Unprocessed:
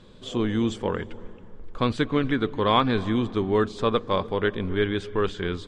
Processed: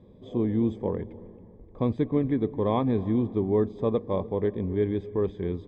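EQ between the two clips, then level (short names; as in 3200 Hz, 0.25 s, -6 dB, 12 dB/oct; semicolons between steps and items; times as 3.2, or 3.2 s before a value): running mean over 31 samples; HPF 42 Hz; 0.0 dB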